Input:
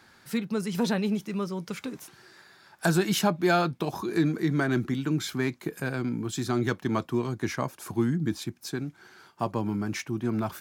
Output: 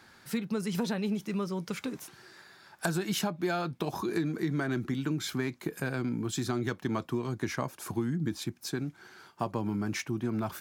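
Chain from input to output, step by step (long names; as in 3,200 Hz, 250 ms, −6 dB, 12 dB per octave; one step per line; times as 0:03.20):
downward compressor 6 to 1, threshold −27 dBFS, peak gain reduction 10 dB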